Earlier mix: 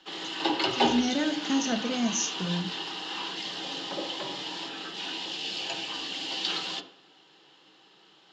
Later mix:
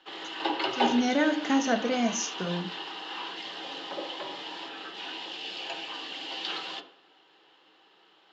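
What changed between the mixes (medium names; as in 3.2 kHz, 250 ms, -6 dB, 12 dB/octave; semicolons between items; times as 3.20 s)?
speech +7.0 dB; master: add tone controls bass -13 dB, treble -12 dB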